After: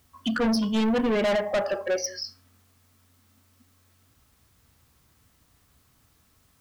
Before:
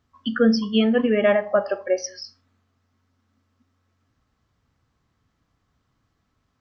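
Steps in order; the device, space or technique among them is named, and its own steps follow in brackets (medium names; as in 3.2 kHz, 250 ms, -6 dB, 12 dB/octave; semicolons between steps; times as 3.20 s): open-reel tape (saturation -24.5 dBFS, distortion -6 dB; peaking EQ 67 Hz +4.5 dB 0.88 oct; white noise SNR 37 dB); trim +3.5 dB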